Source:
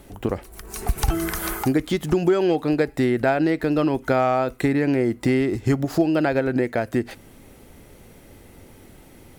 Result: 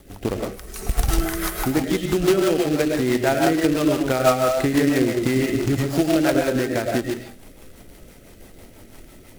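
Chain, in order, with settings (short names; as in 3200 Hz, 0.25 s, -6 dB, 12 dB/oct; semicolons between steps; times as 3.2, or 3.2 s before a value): digital reverb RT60 0.41 s, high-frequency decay 0.65×, pre-delay 65 ms, DRR -0.5 dB; companded quantiser 4-bit; rotary speaker horn 6 Hz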